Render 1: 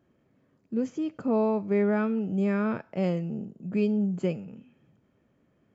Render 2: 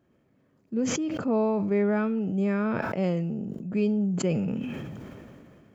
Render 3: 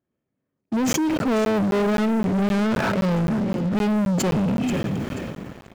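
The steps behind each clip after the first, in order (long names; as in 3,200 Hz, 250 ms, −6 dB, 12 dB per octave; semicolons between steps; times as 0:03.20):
level that may fall only so fast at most 23 dB per second
repeating echo 483 ms, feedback 23%, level −14 dB; leveller curve on the samples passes 5; regular buffer underruns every 0.26 s, samples 512, zero, from 0:00.93; level −4.5 dB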